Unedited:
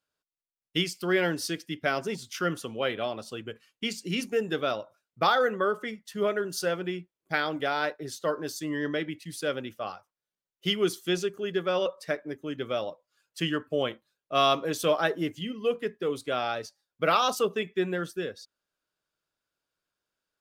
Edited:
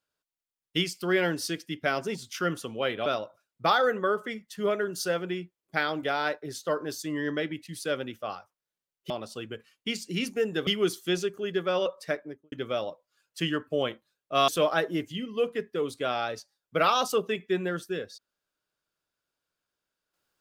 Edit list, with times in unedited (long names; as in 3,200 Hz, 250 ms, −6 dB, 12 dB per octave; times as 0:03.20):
0:03.06–0:04.63: move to 0:10.67
0:12.14–0:12.52: fade out and dull
0:14.48–0:14.75: remove